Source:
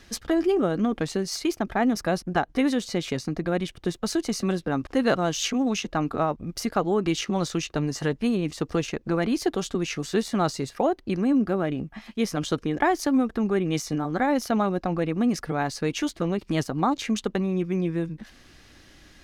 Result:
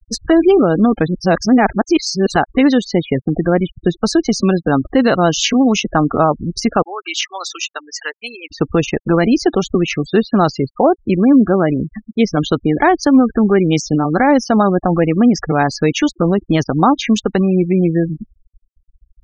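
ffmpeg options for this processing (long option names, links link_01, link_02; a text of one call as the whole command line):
ffmpeg -i in.wav -filter_complex "[0:a]asettb=1/sr,asplit=3[link_01][link_02][link_03];[link_01]atrim=end=2.914[link_04];[link_02]atrim=start=2.91:end=3.72,asetpts=PTS-STARTPTS,afade=type=in:duration=0.004:curve=qsin,afade=type=out:start_time=0.806:duration=0.004:curve=qsin,lowpass=frequency=2200:poles=1[link_05];[link_03]atrim=start=3.716[link_06];[link_04][link_05]acrossfade=duration=0.004:curve1=hsin:curve2=qsin[link_07];[link_07][link_06]acrossfade=duration=0.004:curve1=qsin:curve2=hsin,asettb=1/sr,asplit=3[link_08][link_09][link_10];[link_08]atrim=end=6.824[link_11];[link_09]atrim=start=6.82:end=8.51,asetpts=PTS-STARTPTS,afade=type=in:duration=0.004:curve=qsin,afade=type=out:start_time=1.686:duration=0.004:curve=qsin,highpass=1200[link_12];[link_10]atrim=start=8.506[link_13];[link_11][link_12]acrossfade=duration=0.004:curve1=hsin:curve2=qsin[link_14];[link_14][link_13]acrossfade=duration=0.004:curve1=qsin:curve2=hsin,asettb=1/sr,asplit=3[link_15][link_16][link_17];[link_15]atrim=end=9.634[link_18];[link_16]atrim=start=9.63:end=13.03,asetpts=PTS-STARTPTS,afade=type=in:duration=0.004:curve=qsin,afade=type=out:start_time=3.396:duration=0.004:curve=qsin,adynamicsmooth=sensitivity=4.5:basefreq=5300[link_19];[link_17]atrim=start=13.026[link_20];[link_18][link_19]acrossfade=duration=0.004:curve1=hsin:curve2=qsin[link_21];[link_21][link_20]acrossfade=duration=0.004:curve1=qsin:curve2=hsin,asplit=3[link_22][link_23][link_24];[link_22]atrim=end=1.082[link_25];[link_23]atrim=start=1.078:end=2.342,asetpts=PTS-STARTPTS,areverse[link_26];[link_24]atrim=start=2.338[link_27];[link_25][link_26]acrossfade=duration=0.004:curve1=hsin:curve2=hsin[link_28];[link_28][link_27]acrossfade=duration=0.004:curve1=hsin:curve2=hsin,afftfilt=real='re*gte(hypot(re,im),0.0251)':imag='im*gte(hypot(re,im),0.0251)':win_size=1024:overlap=0.75,acrossover=split=7300[link_29][link_30];[link_30]acompressor=threshold=-49dB:ratio=4:attack=1:release=60[link_31];[link_29][link_31]amix=inputs=2:normalize=0,alimiter=level_in=13dB:limit=-1dB:release=50:level=0:latency=1,volume=-1dB" out.wav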